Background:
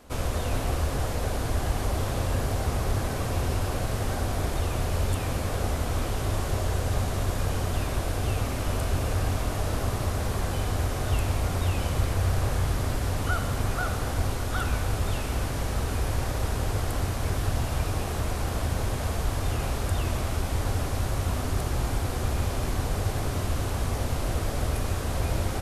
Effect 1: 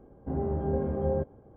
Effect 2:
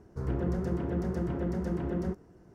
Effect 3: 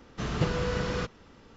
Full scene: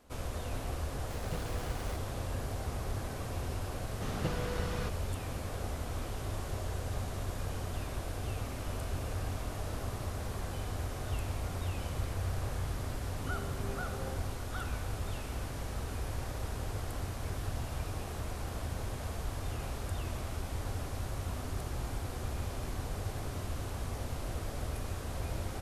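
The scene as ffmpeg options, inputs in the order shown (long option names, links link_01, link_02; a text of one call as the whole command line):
ffmpeg -i bed.wav -i cue0.wav -i cue1.wav -i cue2.wav -filter_complex "[3:a]asplit=2[link_01][link_02];[0:a]volume=-10dB[link_03];[link_01]aeval=exprs='val(0)*gte(abs(val(0)),0.0398)':channel_layout=same,atrim=end=1.56,asetpts=PTS-STARTPTS,volume=-14dB,afade=type=in:duration=0.004:curve=hsin,afade=type=out:start_time=1.556:duration=0.004:curve=hsin,adelay=910[link_04];[link_02]atrim=end=1.56,asetpts=PTS-STARTPTS,volume=-8dB,afade=type=in:duration=0.004:curve=hsin,afade=type=out:start_time=1.556:duration=0.004:curve=hsin,adelay=3830[link_05];[1:a]atrim=end=1.56,asetpts=PTS-STARTPTS,volume=-15.5dB,afade=type=in:duration=0.004:curve=hsin,afade=type=out:start_time=1.556:duration=0.004:curve=hsin,adelay=12950[link_06];[link_03][link_04][link_05][link_06]amix=inputs=4:normalize=0" out.wav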